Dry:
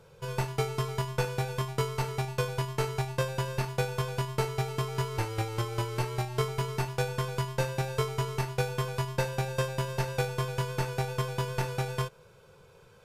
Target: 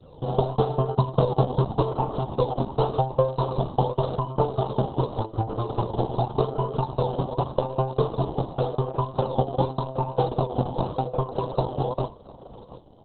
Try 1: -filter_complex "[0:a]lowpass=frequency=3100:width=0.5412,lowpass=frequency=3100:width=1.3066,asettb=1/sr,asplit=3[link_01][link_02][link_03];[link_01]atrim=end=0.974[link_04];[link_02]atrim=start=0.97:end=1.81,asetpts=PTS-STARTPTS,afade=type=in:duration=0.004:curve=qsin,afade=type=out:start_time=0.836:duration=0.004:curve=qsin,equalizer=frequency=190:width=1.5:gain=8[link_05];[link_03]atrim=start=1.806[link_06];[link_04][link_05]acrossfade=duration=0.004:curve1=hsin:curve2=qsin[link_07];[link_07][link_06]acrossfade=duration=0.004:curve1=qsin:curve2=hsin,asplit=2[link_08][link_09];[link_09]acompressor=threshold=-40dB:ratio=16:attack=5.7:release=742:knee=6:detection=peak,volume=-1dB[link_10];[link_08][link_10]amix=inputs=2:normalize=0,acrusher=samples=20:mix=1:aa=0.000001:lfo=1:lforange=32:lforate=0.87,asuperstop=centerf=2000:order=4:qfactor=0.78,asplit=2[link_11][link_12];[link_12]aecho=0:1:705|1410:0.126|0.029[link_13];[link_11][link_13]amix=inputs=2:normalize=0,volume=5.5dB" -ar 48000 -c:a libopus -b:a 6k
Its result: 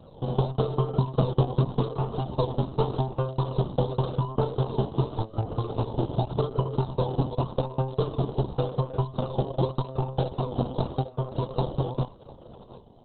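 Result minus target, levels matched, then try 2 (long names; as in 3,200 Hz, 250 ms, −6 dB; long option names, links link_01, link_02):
1,000 Hz band −4.0 dB
-filter_complex "[0:a]lowpass=frequency=3100:width=0.5412,lowpass=frequency=3100:width=1.3066,asettb=1/sr,asplit=3[link_01][link_02][link_03];[link_01]atrim=end=0.974[link_04];[link_02]atrim=start=0.97:end=1.81,asetpts=PTS-STARTPTS,afade=type=in:duration=0.004:curve=qsin,afade=type=out:start_time=0.836:duration=0.004:curve=qsin,equalizer=frequency=190:width=1.5:gain=8[link_05];[link_03]atrim=start=1.806[link_06];[link_04][link_05]acrossfade=duration=0.004:curve1=hsin:curve2=qsin[link_07];[link_07][link_06]acrossfade=duration=0.004:curve1=qsin:curve2=hsin,asplit=2[link_08][link_09];[link_09]acompressor=threshold=-40dB:ratio=16:attack=5.7:release=742:knee=6:detection=peak,volume=-1dB[link_10];[link_08][link_10]amix=inputs=2:normalize=0,acrusher=samples=20:mix=1:aa=0.000001:lfo=1:lforange=32:lforate=0.87,asuperstop=centerf=2000:order=4:qfactor=0.78,adynamicequalizer=threshold=0.00562:dfrequency=760:dqfactor=0.98:tfrequency=760:tqfactor=0.98:attack=5:release=100:ratio=0.438:range=3.5:mode=boostabove:tftype=bell,asplit=2[link_11][link_12];[link_12]aecho=0:1:705|1410:0.126|0.029[link_13];[link_11][link_13]amix=inputs=2:normalize=0,volume=5.5dB" -ar 48000 -c:a libopus -b:a 6k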